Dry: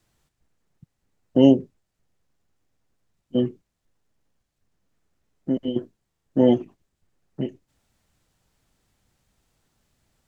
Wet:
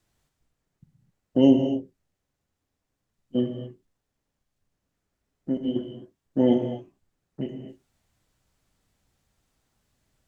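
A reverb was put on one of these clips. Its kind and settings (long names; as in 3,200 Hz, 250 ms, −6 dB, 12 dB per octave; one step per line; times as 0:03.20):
reverb whose tail is shaped and stops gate 280 ms flat, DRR 4.5 dB
level −4 dB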